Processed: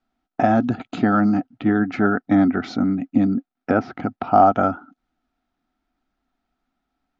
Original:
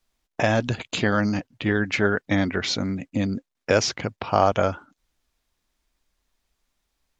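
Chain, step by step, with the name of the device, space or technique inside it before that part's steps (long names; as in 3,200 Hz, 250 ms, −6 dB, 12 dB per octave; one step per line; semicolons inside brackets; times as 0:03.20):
0:03.26–0:03.95: treble cut that deepens with the level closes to 2,300 Hz, closed at −19 dBFS
dynamic equaliser 2,800 Hz, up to −6 dB, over −41 dBFS, Q 1.2
inside a cardboard box (low-pass filter 4,200 Hz 12 dB per octave; hollow resonant body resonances 260/730/1,300 Hz, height 18 dB, ringing for 30 ms)
level −6.5 dB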